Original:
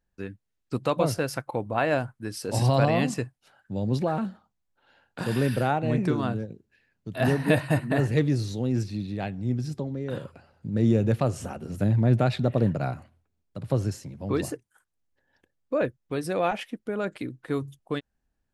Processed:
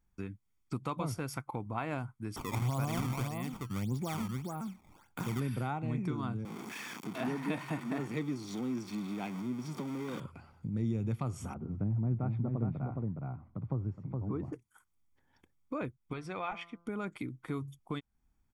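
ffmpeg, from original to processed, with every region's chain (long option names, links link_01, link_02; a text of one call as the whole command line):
ffmpeg -i in.wav -filter_complex "[0:a]asettb=1/sr,asplit=3[link_01][link_02][link_03];[link_01]atrim=end=2.364[link_04];[link_02]atrim=start=2.36:end=5.4,asetpts=PTS-STARTPTS,afade=type=in:duration=0.004:curve=qsin,afade=type=out:start_time=3.036:duration=0.004:curve=qsin,aecho=1:1:428:0.473,atrim=end_sample=134064,acrusher=samples=17:mix=1:aa=0.000001:lfo=1:lforange=27.2:lforate=1.7[link_05];[link_03]atrim=start=5.396[link_06];[link_04][link_05]acrossfade=duration=0.004:curve1=hsin:curve2=qsin[link_07];[link_07][link_06]acrossfade=duration=0.004:curve1=qsin:curve2=hsin,asettb=1/sr,asplit=3[link_08][link_09][link_10];[link_08]atrim=end=6.454[link_11];[link_09]atrim=start=6.45:end=10.2,asetpts=PTS-STARTPTS,afade=type=in:duration=0.004:curve=qsin,afade=type=out:start_time=3.746:duration=0.004:curve=qsin,aeval=exprs='val(0)+0.5*0.0237*sgn(val(0))':channel_layout=same,highpass=frequency=190:width=0.5412,highpass=frequency=190:width=1.3066,acrossover=split=6600[link_12][link_13];[link_13]acompressor=threshold=-51dB:ratio=4:attack=1:release=60[link_14];[link_12][link_14]amix=inputs=2:normalize=0[link_15];[link_10]atrim=start=10.196[link_16];[link_11][link_15]acrossfade=duration=0.004:curve1=hsin:curve2=qsin[link_17];[link_17][link_16]acrossfade=duration=0.004:curve1=qsin:curve2=hsin,asettb=1/sr,asplit=3[link_18][link_19][link_20];[link_18]atrim=end=11.544[link_21];[link_19]atrim=start=11.54:end=14.53,asetpts=PTS-STARTPTS,afade=type=in:duration=0.004:curve=qsin,afade=type=out:start_time=2.986:duration=0.004:curve=qsin,lowpass=1000,aecho=1:1:416:0.531,atrim=end_sample=131859[link_22];[link_20]atrim=start=14.526[link_23];[link_21][link_22]acrossfade=duration=0.004:curve1=hsin:curve2=qsin[link_24];[link_24][link_23]acrossfade=duration=0.004:curve1=qsin:curve2=hsin,asettb=1/sr,asplit=3[link_25][link_26][link_27];[link_25]atrim=end=16.134[link_28];[link_26]atrim=start=16.13:end=16.87,asetpts=PTS-STARTPTS,afade=type=in:duration=0.004:curve=qsin,afade=type=out:start_time=0.736:duration=0.004:curve=qsin,lowpass=4100,equalizer=frequency=240:width=0.79:gain=-10,bandreject=frequency=170.6:width_type=h:width=4,bandreject=frequency=341.2:width_type=h:width=4,bandreject=frequency=511.8:width_type=h:width=4,bandreject=frequency=682.4:width_type=h:width=4,bandreject=frequency=853:width_type=h:width=4,bandreject=frequency=1023.6:width_type=h:width=4,bandreject=frequency=1194.2:width_type=h:width=4,bandreject=frequency=1364.8:width_type=h:width=4,bandreject=frequency=1535.4:width_type=h:width=4[link_29];[link_27]atrim=start=16.866[link_30];[link_28][link_29]acrossfade=duration=0.004:curve1=hsin:curve2=qsin[link_31];[link_31][link_30]acrossfade=duration=0.004:curve1=qsin:curve2=hsin,equalizer=frequency=4200:width_type=o:width=0.42:gain=-6,aecho=1:1:0.9:0.61,acompressor=threshold=-41dB:ratio=2" out.wav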